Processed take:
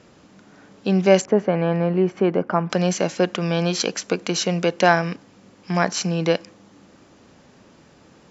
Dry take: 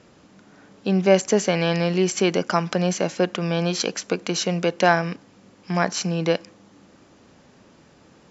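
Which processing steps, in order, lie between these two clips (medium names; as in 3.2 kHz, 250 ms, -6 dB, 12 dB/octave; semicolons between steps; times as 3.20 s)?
1.25–2.70 s: low-pass 1.3 kHz 12 dB/octave; trim +1.5 dB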